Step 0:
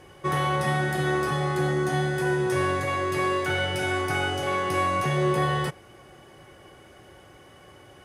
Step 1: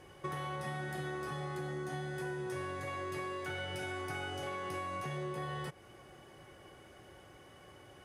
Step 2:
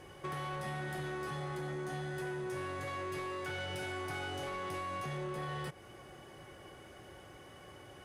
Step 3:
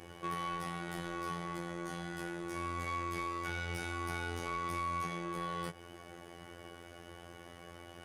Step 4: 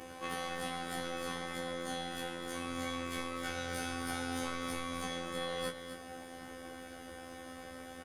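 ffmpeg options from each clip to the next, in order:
ffmpeg -i in.wav -af "acompressor=threshold=-31dB:ratio=6,volume=-6dB" out.wav
ffmpeg -i in.wav -af "asoftclip=type=tanh:threshold=-37.5dB,volume=3dB" out.wav
ffmpeg -i in.wav -af "areverse,acompressor=mode=upward:threshold=-54dB:ratio=2.5,areverse,afftfilt=real='hypot(re,im)*cos(PI*b)':imag='0':win_size=2048:overlap=0.75,volume=5dB" out.wav
ffmpeg -i in.wav -filter_complex "[0:a]asplit=2[link_01][link_02];[link_02]aecho=0:1:256:0.335[link_03];[link_01][link_03]amix=inputs=2:normalize=0,afftfilt=real='re*1.73*eq(mod(b,3),0)':imag='im*1.73*eq(mod(b,3),0)':win_size=2048:overlap=0.75,volume=7.5dB" out.wav

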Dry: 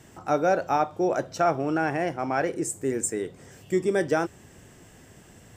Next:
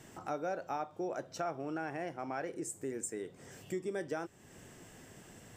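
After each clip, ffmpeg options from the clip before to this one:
ffmpeg -i in.wav -af "equalizer=frequency=65:width=0.95:gain=-7,acompressor=threshold=-41dB:ratio=2,volume=-2.5dB" out.wav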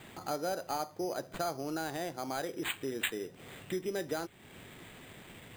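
ffmpeg -i in.wav -af "highshelf=frequency=8900:gain=10.5,acrusher=samples=8:mix=1:aa=0.000001,volume=2dB" out.wav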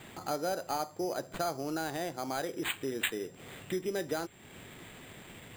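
ffmpeg -i in.wav -af "aeval=exprs='val(0)+0.000501*sin(2*PI*7400*n/s)':channel_layout=same,volume=1.5dB" out.wav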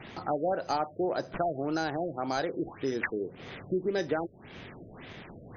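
ffmpeg -i in.wav -af "afftfilt=real='re*lt(b*sr/1024,670*pow(6800/670,0.5+0.5*sin(2*PI*1.8*pts/sr)))':imag='im*lt(b*sr/1024,670*pow(6800/670,0.5+0.5*sin(2*PI*1.8*pts/sr)))':win_size=1024:overlap=0.75,volume=4.5dB" out.wav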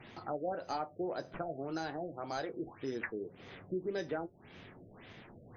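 ffmpeg -i in.wav -af "flanger=delay=8.3:depth=4:regen=-56:speed=0.36:shape=sinusoidal,volume=-3.5dB" out.wav

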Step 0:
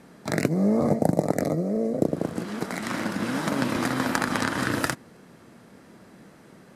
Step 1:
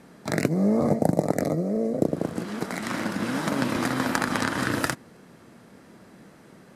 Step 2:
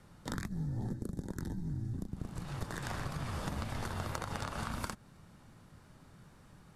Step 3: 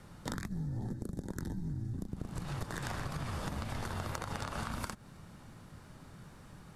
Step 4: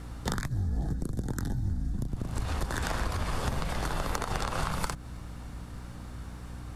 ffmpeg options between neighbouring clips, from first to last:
ffmpeg -i in.wav -af anull out.wav
ffmpeg -i in.wav -af "acompressor=threshold=-27dB:ratio=6,afreqshift=-350,volume=-7dB" out.wav
ffmpeg -i in.wav -af "acompressor=threshold=-40dB:ratio=4,volume=5dB" out.wav
ffmpeg -i in.wav -af "afreqshift=-64,aeval=exprs='val(0)+0.00355*(sin(2*PI*60*n/s)+sin(2*PI*2*60*n/s)/2+sin(2*PI*3*60*n/s)/3+sin(2*PI*4*60*n/s)/4+sin(2*PI*5*60*n/s)/5)':channel_layout=same,volume=7.5dB" out.wav

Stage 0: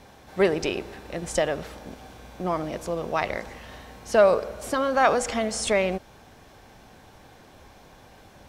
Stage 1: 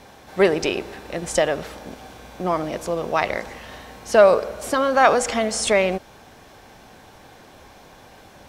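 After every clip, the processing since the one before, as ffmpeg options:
ffmpeg -i in.wav -af "lowshelf=frequency=170:gain=-5.5,volume=5dB" out.wav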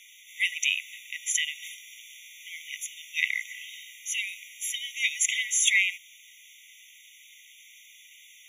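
ffmpeg -i in.wav -af "highshelf=frequency=8100:gain=6,afftfilt=real='re*eq(mod(floor(b*sr/1024/1900),2),1)':imag='im*eq(mod(floor(b*sr/1024/1900),2),1)':win_size=1024:overlap=0.75,volume=3dB" out.wav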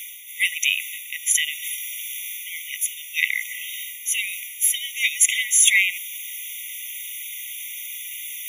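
ffmpeg -i in.wav -af "areverse,acompressor=mode=upward:threshold=-34dB:ratio=2.5,areverse,aexciter=amount=5.6:drive=3.5:freq=9500,volume=5dB" out.wav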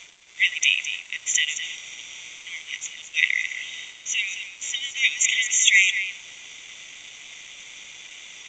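ffmpeg -i in.wav -af "aresample=16000,aeval=exprs='sgn(val(0))*max(abs(val(0))-0.00531,0)':channel_layout=same,aresample=44100,aecho=1:1:214:0.299,volume=1.5dB" out.wav

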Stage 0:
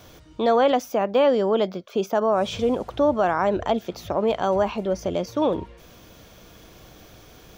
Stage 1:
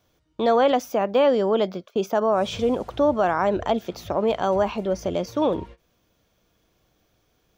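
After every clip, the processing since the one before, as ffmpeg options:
ffmpeg -i in.wav -af "agate=range=-19dB:threshold=-40dB:ratio=16:detection=peak" out.wav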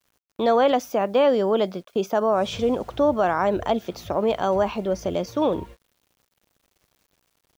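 ffmpeg -i in.wav -af "acrusher=bits=9:mix=0:aa=0.000001" out.wav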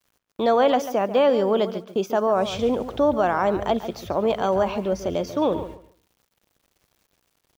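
ffmpeg -i in.wav -filter_complex "[0:a]asplit=2[link_01][link_02];[link_02]adelay=141,lowpass=frequency=3600:poles=1,volume=-12dB,asplit=2[link_03][link_04];[link_04]adelay=141,lowpass=frequency=3600:poles=1,volume=0.2,asplit=2[link_05][link_06];[link_06]adelay=141,lowpass=frequency=3600:poles=1,volume=0.2[link_07];[link_01][link_03][link_05][link_07]amix=inputs=4:normalize=0" out.wav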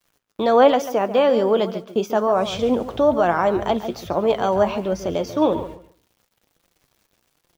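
ffmpeg -i in.wav -af "flanger=delay=5.7:depth=4:regen=65:speed=1.2:shape=sinusoidal,volume=6.5dB" out.wav

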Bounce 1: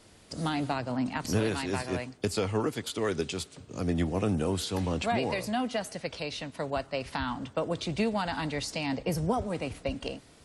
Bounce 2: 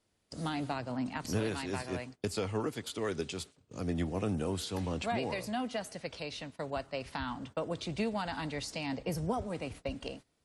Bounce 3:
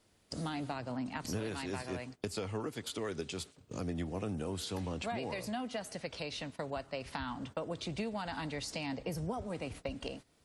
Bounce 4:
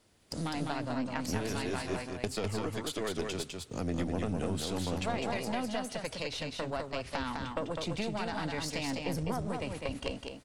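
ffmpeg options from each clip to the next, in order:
ffmpeg -i in.wav -af "agate=range=-16dB:threshold=-43dB:ratio=16:detection=peak,volume=-5dB" out.wav
ffmpeg -i in.wav -af "acompressor=threshold=-48dB:ratio=2.5,volume=7.5dB" out.wav
ffmpeg -i in.wav -af "aeval=exprs='0.0841*(cos(1*acos(clip(val(0)/0.0841,-1,1)))-cos(1*PI/2))+0.0335*(cos(2*acos(clip(val(0)/0.0841,-1,1)))-cos(2*PI/2))+0.00237*(cos(6*acos(clip(val(0)/0.0841,-1,1)))-cos(6*PI/2))':channel_layout=same,aecho=1:1:204:0.631,volume=2.5dB" out.wav

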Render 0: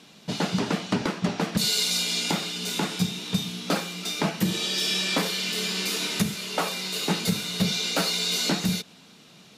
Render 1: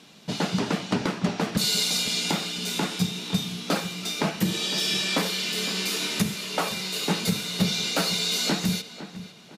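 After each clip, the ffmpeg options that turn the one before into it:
ffmpeg -i in.wav -filter_complex "[0:a]asplit=2[link_01][link_02];[link_02]adelay=508,lowpass=frequency=2700:poles=1,volume=-13dB,asplit=2[link_03][link_04];[link_04]adelay=508,lowpass=frequency=2700:poles=1,volume=0.36,asplit=2[link_05][link_06];[link_06]adelay=508,lowpass=frequency=2700:poles=1,volume=0.36,asplit=2[link_07][link_08];[link_08]adelay=508,lowpass=frequency=2700:poles=1,volume=0.36[link_09];[link_01][link_03][link_05][link_07][link_09]amix=inputs=5:normalize=0" out.wav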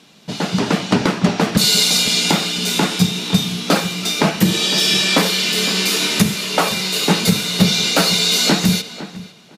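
ffmpeg -i in.wav -af "dynaudnorm=framelen=100:gausssize=11:maxgain=8dB,volume=2.5dB" out.wav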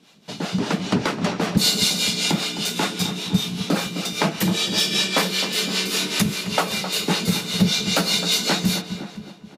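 ffmpeg -i in.wav -filter_complex "[0:a]acrossover=split=420[link_01][link_02];[link_01]aeval=exprs='val(0)*(1-0.7/2+0.7/2*cos(2*PI*5.1*n/s))':channel_layout=same[link_03];[link_02]aeval=exprs='val(0)*(1-0.7/2-0.7/2*cos(2*PI*5.1*n/s))':channel_layout=same[link_04];[link_03][link_04]amix=inputs=2:normalize=0,asplit=2[link_05][link_06];[link_06]adelay=261,lowpass=frequency=1500:poles=1,volume=-9.5dB,asplit=2[link_07][link_08];[link_08]adelay=261,lowpass=frequency=1500:poles=1,volume=0.53,asplit=2[link_09][link_10];[link_10]adelay=261,lowpass=frequency=1500:poles=1,volume=0.53,asplit=2[link_11][link_12];[link_12]adelay=261,lowpass=frequency=1500:poles=1,volume=0.53,asplit=2[link_13][link_14];[link_14]adelay=261,lowpass=frequency=1500:poles=1,volume=0.53,asplit=2[link_15][link_16];[link_16]adelay=261,lowpass=frequency=1500:poles=1,volume=0.53[link_17];[link_05][link_07][link_09][link_11][link_13][link_15][link_17]amix=inputs=7:normalize=0,volume=-2.5dB" out.wav

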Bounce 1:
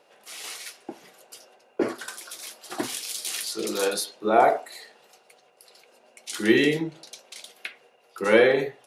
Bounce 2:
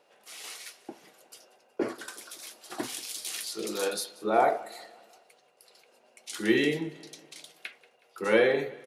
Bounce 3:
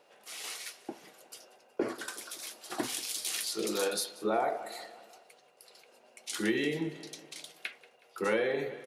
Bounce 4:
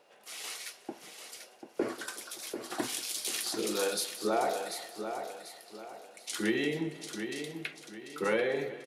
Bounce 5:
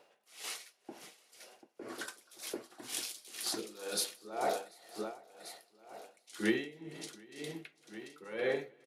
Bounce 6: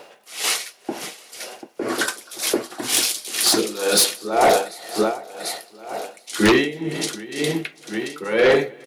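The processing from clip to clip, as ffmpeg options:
ffmpeg -i in.wav -af "aecho=1:1:184|368|552|736:0.0891|0.0437|0.0214|0.0105,volume=-5dB" out.wav
ffmpeg -i in.wav -af "acompressor=threshold=-28dB:ratio=6,volume=1.5dB" out.wav
ffmpeg -i in.wav -af "aecho=1:1:741|1482|2223|2964:0.398|0.143|0.0516|0.0186" out.wav
ffmpeg -i in.wav -af "aeval=exprs='val(0)*pow(10,-20*(0.5-0.5*cos(2*PI*2*n/s))/20)':channel_layout=same" out.wav
ffmpeg -i in.wav -af "aeval=exprs='0.133*sin(PI/2*2.82*val(0)/0.133)':channel_layout=same,volume=8dB" out.wav

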